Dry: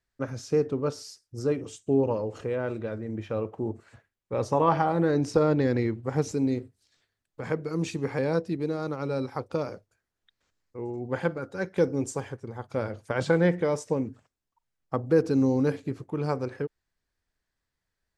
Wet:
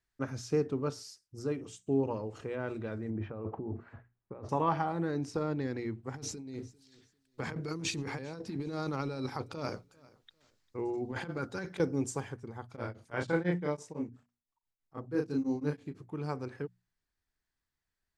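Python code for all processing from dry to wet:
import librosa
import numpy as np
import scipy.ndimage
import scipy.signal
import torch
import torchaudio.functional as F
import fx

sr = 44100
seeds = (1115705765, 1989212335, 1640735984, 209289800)

y = fx.chain(x, sr, fx.lowpass(hz=1400.0, slope=12),
    fx.over_compress(threshold_db=-36.0, ratio=-1.0), at=(3.1, 4.49))
y = fx.chain(y, sr, fx.peak_eq(hz=4500.0, db=5.0, octaves=1.3),
    fx.over_compress(threshold_db=-33.0, ratio=-1.0),
    fx.echo_feedback(ms=397, feedback_pct=25, wet_db=-23.5), at=(6.14, 11.8))
y = fx.chain(y, sr, fx.high_shelf(hz=8300.0, db=-3.5),
    fx.doubler(ms=34.0, db=-3.5),
    fx.tremolo_abs(hz=6.0), at=(12.69, 16.0))
y = fx.peak_eq(y, sr, hz=530.0, db=-6.0, octaves=0.49)
y = fx.hum_notches(y, sr, base_hz=60, count=4)
y = fx.rider(y, sr, range_db=10, speed_s=2.0)
y = F.gain(torch.from_numpy(y), -7.0).numpy()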